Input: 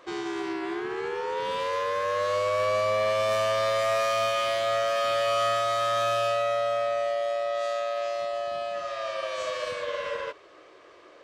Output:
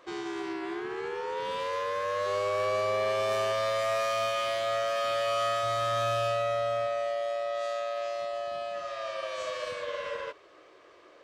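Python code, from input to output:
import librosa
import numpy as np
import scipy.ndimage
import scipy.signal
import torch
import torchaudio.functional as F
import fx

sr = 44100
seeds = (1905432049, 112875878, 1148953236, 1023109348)

y = fx.dmg_buzz(x, sr, base_hz=400.0, harmonics=4, level_db=-37.0, tilt_db=-8, odd_only=False, at=(2.25, 3.51), fade=0.02)
y = fx.peak_eq(y, sr, hz=92.0, db=10.0, octaves=2.2, at=(5.63, 6.87))
y = y * librosa.db_to_amplitude(-3.5)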